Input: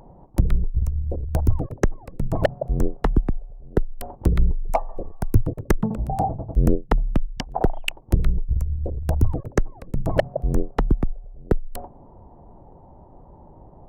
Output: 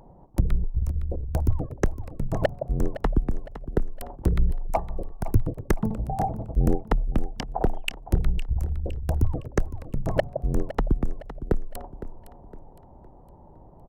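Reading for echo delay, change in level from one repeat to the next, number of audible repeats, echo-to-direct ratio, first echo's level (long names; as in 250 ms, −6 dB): 511 ms, −8.0 dB, 3, −13.0 dB, −13.5 dB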